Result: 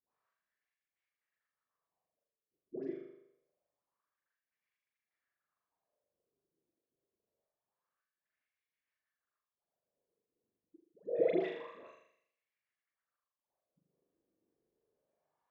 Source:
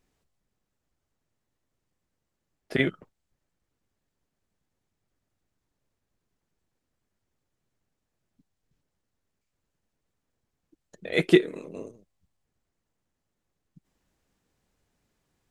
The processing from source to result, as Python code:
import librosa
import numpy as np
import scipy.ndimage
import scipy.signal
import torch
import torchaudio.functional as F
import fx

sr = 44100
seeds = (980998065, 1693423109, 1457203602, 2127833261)

p1 = scipy.signal.sosfilt(scipy.signal.butter(6, 7100.0, 'lowpass', fs=sr, output='sos'), x)
p2 = fx.level_steps(p1, sr, step_db=20)
p3 = fx.dispersion(p2, sr, late='highs', ms=120.0, hz=820.0)
p4 = p3 + fx.room_flutter(p3, sr, wall_m=6.9, rt60_s=0.74, dry=0)
p5 = fx.wah_lfo(p4, sr, hz=0.26, low_hz=340.0, high_hz=2200.0, q=3.5)
p6 = fx.doubler(p5, sr, ms=42.0, db=-8.5)
y = p6 * 10.0 ** (4.5 / 20.0)